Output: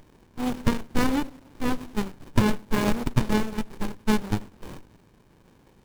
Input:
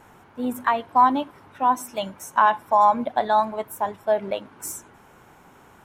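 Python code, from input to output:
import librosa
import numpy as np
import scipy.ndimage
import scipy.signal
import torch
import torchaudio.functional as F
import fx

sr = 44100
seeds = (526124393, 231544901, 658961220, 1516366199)

p1 = fx.envelope_flatten(x, sr, power=0.3)
p2 = fx.peak_eq(p1, sr, hz=920.0, db=2.5, octaves=0.28)
p3 = p2 + fx.echo_wet_lowpass(p2, sr, ms=100, feedback_pct=51, hz=470.0, wet_db=-18.5, dry=0)
y = fx.running_max(p3, sr, window=65)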